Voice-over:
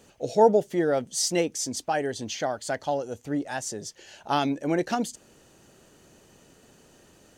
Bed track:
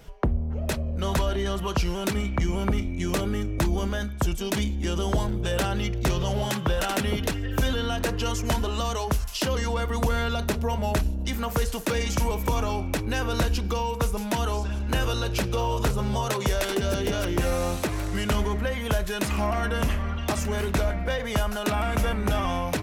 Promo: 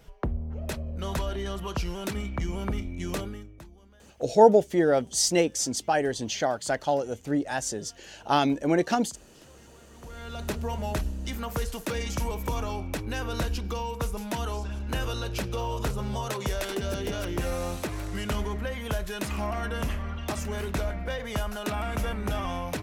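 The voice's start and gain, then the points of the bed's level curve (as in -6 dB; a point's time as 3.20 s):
4.00 s, +2.0 dB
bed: 3.19 s -5.5 dB
3.76 s -29 dB
9.85 s -29 dB
10.48 s -5 dB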